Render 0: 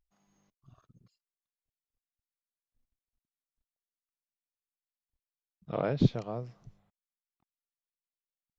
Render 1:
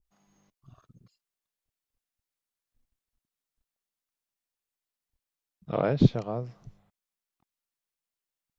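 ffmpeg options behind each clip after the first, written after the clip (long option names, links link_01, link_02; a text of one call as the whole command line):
ffmpeg -i in.wav -af "adynamicequalizer=threshold=0.00447:dfrequency=1600:dqfactor=0.7:tfrequency=1600:tqfactor=0.7:attack=5:release=100:ratio=0.375:range=2:mode=cutabove:tftype=highshelf,volume=4.5dB" out.wav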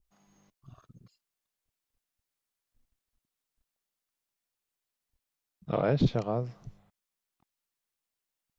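ffmpeg -i in.wav -af "alimiter=limit=-18dB:level=0:latency=1:release=10,volume=2dB" out.wav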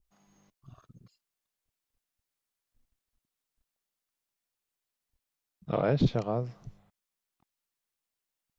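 ffmpeg -i in.wav -af anull out.wav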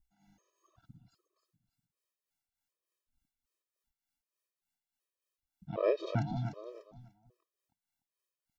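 ffmpeg -i in.wav -af "tremolo=f=3.4:d=0.62,aecho=1:1:296|592|888:0.398|0.111|0.0312,afftfilt=real='re*gt(sin(2*PI*1.3*pts/sr)*(1-2*mod(floor(b*sr/1024/330),2)),0)':imag='im*gt(sin(2*PI*1.3*pts/sr)*(1-2*mod(floor(b*sr/1024/330),2)),0)':win_size=1024:overlap=0.75,volume=1dB" out.wav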